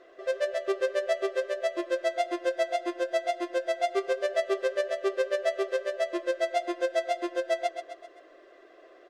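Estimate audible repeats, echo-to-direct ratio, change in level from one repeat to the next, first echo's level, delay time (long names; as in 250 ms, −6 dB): 4, −7.5 dB, −5.5 dB, −9.0 dB, 130 ms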